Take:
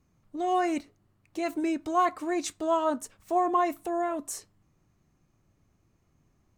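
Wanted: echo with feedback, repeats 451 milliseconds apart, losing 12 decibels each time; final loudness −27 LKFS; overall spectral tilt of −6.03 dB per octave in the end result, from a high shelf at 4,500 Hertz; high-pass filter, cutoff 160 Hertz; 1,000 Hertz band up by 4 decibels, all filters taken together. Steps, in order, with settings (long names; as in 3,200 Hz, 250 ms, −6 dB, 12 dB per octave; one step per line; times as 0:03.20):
high-pass filter 160 Hz
parametric band 1,000 Hz +5 dB
high-shelf EQ 4,500 Hz +8.5 dB
repeating echo 451 ms, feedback 25%, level −12 dB
level −1 dB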